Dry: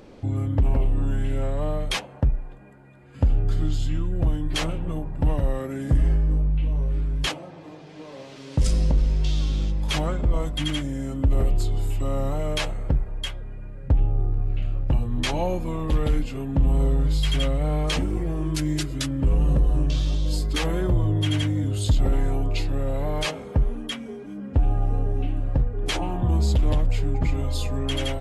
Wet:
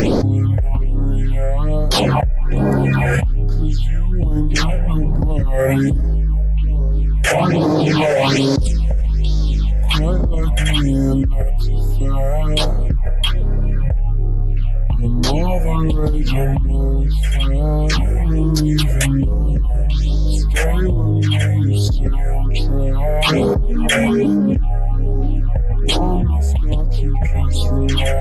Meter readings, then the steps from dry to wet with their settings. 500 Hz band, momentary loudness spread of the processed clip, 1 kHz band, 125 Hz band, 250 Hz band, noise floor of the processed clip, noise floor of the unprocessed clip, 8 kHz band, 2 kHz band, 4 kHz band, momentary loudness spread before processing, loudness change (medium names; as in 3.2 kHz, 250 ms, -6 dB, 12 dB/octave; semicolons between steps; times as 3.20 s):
+10.0 dB, 5 LU, +9.5 dB, +7.5 dB, +10.0 dB, -15 dBFS, -42 dBFS, +8.0 dB, +11.0 dB, +8.0 dB, 7 LU, +7.5 dB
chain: phase shifter stages 6, 1.2 Hz, lowest notch 270–2700 Hz; level flattener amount 100%; trim -1 dB